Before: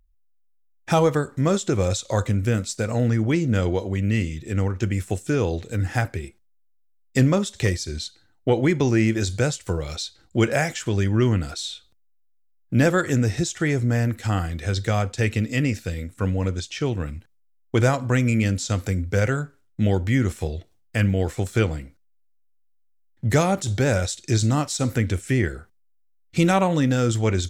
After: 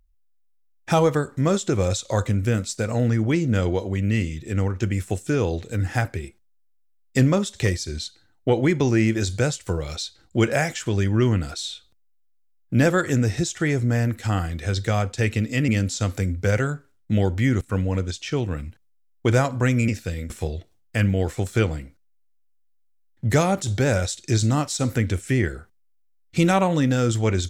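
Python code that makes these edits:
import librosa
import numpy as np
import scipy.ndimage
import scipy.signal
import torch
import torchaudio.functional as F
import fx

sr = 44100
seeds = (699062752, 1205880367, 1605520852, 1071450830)

y = fx.edit(x, sr, fx.swap(start_s=15.68, length_s=0.42, other_s=18.37, other_length_s=1.93), tone=tone)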